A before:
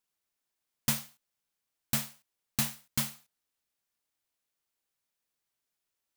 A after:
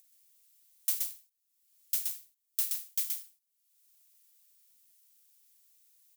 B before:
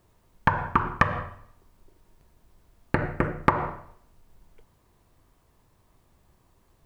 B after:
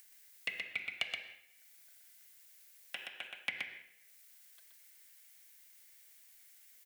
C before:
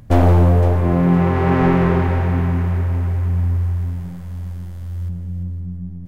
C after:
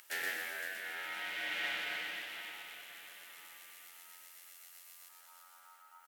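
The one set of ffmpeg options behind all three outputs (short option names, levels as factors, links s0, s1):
-filter_complex "[0:a]highpass=610,aeval=exprs='val(0)*sin(2*PI*1100*n/s)':c=same,aderivative,acompressor=mode=upward:threshold=0.00355:ratio=2.5,asplit=2[s0][s1];[s1]aecho=0:1:124:0.631[s2];[s0][s2]amix=inputs=2:normalize=0"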